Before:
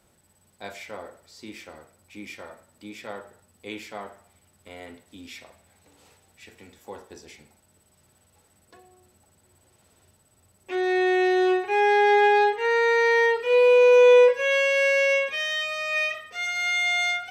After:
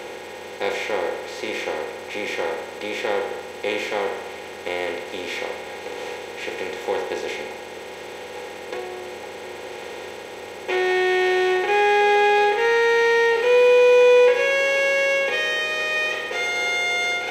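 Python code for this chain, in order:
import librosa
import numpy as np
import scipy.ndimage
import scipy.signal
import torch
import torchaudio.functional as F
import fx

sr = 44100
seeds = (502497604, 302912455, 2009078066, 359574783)

y = fx.bin_compress(x, sr, power=0.4)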